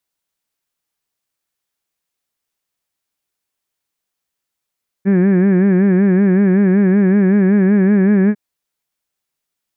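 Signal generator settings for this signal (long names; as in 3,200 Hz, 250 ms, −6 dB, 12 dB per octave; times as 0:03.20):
vowel from formants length 3.30 s, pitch 188 Hz, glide +1 semitone, vibrato depth 1.05 semitones, F1 290 Hz, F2 1,700 Hz, F3 2,300 Hz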